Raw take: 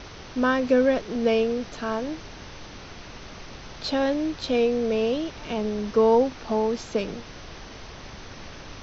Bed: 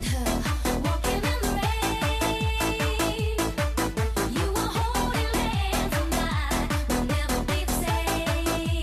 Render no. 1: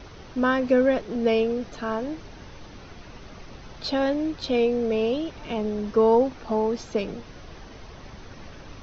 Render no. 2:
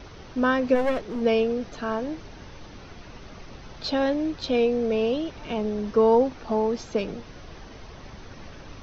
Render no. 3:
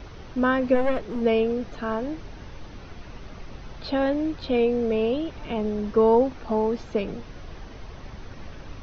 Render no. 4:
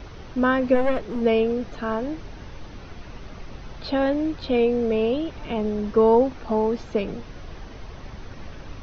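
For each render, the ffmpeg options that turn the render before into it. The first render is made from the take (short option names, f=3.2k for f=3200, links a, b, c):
-af "afftdn=nr=7:nf=-42"
-filter_complex "[0:a]asplit=3[a][b][c];[a]afade=t=out:st=0.74:d=0.02[d];[b]aeval=exprs='clip(val(0),-1,0.0398)':c=same,afade=t=in:st=0.74:d=0.02,afade=t=out:st=1.2:d=0.02[e];[c]afade=t=in:st=1.2:d=0.02[f];[d][e][f]amix=inputs=3:normalize=0"
-filter_complex "[0:a]acrossover=split=3900[a][b];[b]acompressor=threshold=-59dB:ratio=4:attack=1:release=60[c];[a][c]amix=inputs=2:normalize=0,lowshelf=f=92:g=6"
-af "volume=1.5dB"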